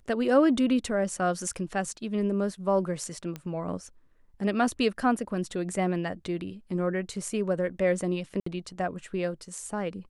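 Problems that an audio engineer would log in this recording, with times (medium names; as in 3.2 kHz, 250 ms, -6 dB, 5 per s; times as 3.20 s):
3.36 s: pop -22 dBFS
8.40–8.46 s: dropout 64 ms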